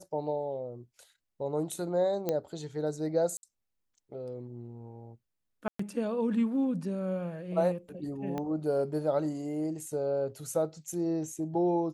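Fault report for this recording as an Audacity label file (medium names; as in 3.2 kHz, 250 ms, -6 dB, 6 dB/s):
2.290000	2.290000	pop -16 dBFS
3.370000	3.430000	dropout 61 ms
5.680000	5.790000	dropout 114 ms
8.380000	8.380000	pop -22 dBFS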